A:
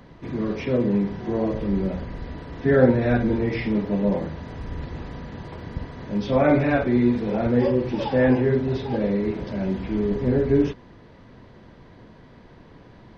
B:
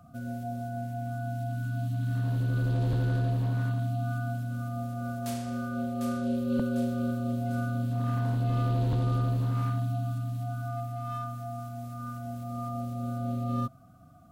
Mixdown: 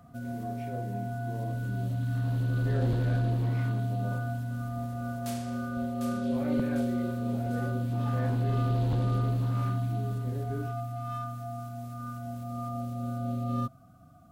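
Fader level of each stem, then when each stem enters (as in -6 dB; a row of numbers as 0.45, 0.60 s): -19.5, -0.5 dB; 0.00, 0.00 s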